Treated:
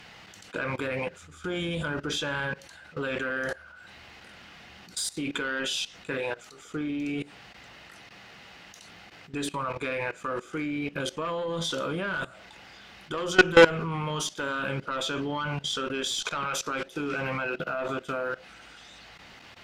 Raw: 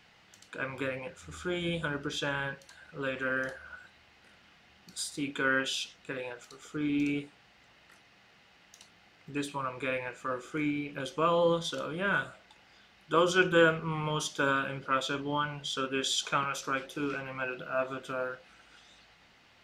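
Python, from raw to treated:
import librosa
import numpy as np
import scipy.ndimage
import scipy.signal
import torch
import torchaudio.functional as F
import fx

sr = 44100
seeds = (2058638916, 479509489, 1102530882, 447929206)

y = fx.cheby_harmonics(x, sr, harmonics=(4, 5), levels_db=(-16, -16), full_scale_db=-10.5)
y = fx.level_steps(y, sr, step_db=19)
y = F.gain(torch.from_numpy(y), 7.5).numpy()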